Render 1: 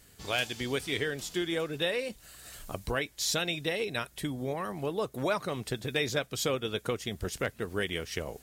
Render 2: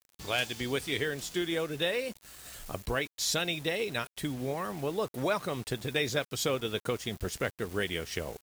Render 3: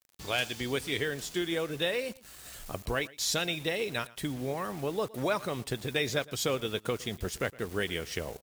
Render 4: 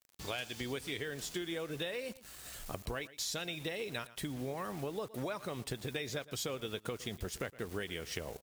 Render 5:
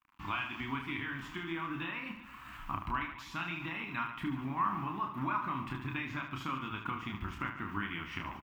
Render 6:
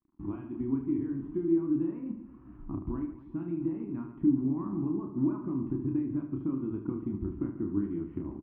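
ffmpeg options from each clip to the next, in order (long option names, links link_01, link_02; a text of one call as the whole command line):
ffmpeg -i in.wav -af "acrusher=bits=7:mix=0:aa=0.000001" out.wav
ffmpeg -i in.wav -af "aecho=1:1:114:0.0841" out.wav
ffmpeg -i in.wav -af "acompressor=threshold=-34dB:ratio=6,volume=-1.5dB" out.wav
ffmpeg -i in.wav -filter_complex "[0:a]firequalizer=gain_entry='entry(160,0);entry(300,4);entry(460,-24);entry(1000,14);entry(1700,1);entry(2600,3);entry(4000,-16);entry(9300,-25);entry(16000,-15)':delay=0.05:min_phase=1,asplit=2[link_01][link_02];[link_02]aecho=0:1:30|75|142.5|243.8|395.6:0.631|0.398|0.251|0.158|0.1[link_03];[link_01][link_03]amix=inputs=2:normalize=0" out.wav
ffmpeg -i in.wav -af "lowpass=frequency=340:width_type=q:width=3.8,volume=3.5dB" out.wav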